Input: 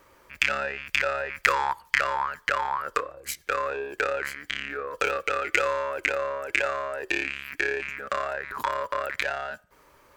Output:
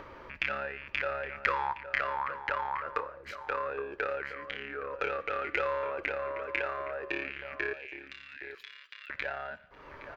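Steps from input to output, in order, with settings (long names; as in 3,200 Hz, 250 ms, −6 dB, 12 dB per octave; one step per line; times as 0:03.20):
0:05.10–0:06.10: transient designer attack −1 dB, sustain +6 dB
0:07.73–0:09.10: inverse Chebyshev high-pass filter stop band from 930 Hz, stop band 50 dB
upward compression, threshold −28 dBFS
high-frequency loss of the air 280 metres
slap from a distant wall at 140 metres, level −10 dB
coupled-rooms reverb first 0.75 s, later 2.8 s, from −24 dB, DRR 16 dB
level −5 dB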